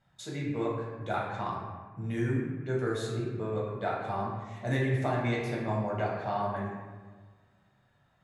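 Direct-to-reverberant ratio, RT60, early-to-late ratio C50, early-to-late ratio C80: -4.0 dB, 1.4 s, 1.5 dB, 3.5 dB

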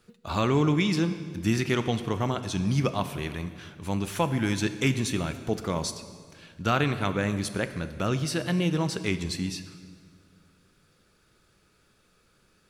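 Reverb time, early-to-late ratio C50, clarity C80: 1.8 s, 11.5 dB, 12.5 dB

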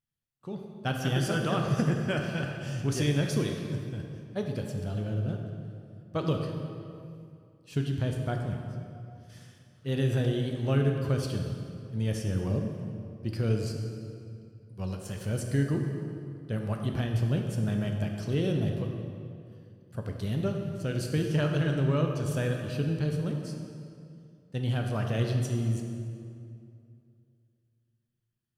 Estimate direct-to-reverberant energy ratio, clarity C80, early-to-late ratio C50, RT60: 2.5 dB, 4.5 dB, 3.5 dB, 2.5 s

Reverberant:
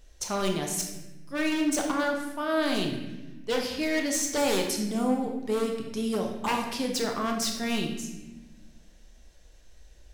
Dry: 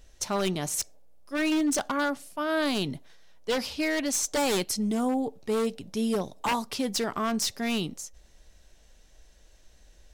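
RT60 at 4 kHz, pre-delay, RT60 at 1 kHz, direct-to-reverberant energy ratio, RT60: 0.85 s, 24 ms, 0.90 s, 2.0 dB, 1.1 s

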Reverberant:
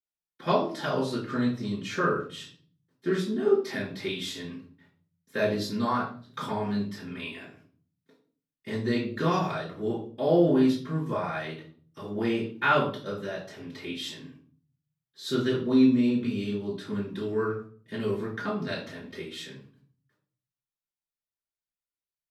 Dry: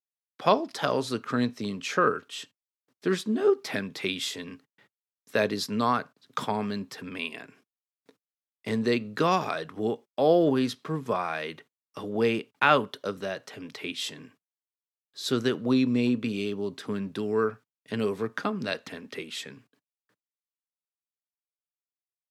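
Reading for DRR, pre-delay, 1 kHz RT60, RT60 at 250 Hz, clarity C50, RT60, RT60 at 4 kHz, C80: -7.5 dB, 3 ms, 0.40 s, 0.75 s, 6.5 dB, 0.45 s, 0.35 s, 11.0 dB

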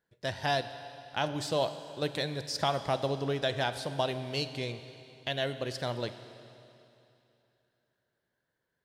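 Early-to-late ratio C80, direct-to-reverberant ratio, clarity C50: 12.0 dB, 10.5 dB, 11.0 dB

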